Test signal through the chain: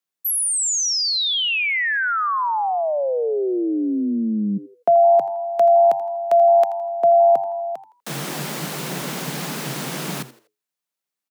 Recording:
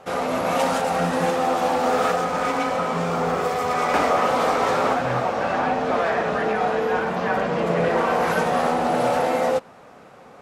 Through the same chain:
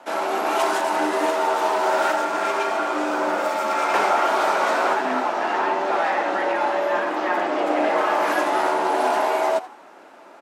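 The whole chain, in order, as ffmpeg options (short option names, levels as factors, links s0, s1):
-filter_complex "[0:a]afreqshift=130,asplit=4[s0][s1][s2][s3];[s1]adelay=82,afreqshift=97,volume=0.15[s4];[s2]adelay=164,afreqshift=194,volume=0.0479[s5];[s3]adelay=246,afreqshift=291,volume=0.0153[s6];[s0][s4][s5][s6]amix=inputs=4:normalize=0"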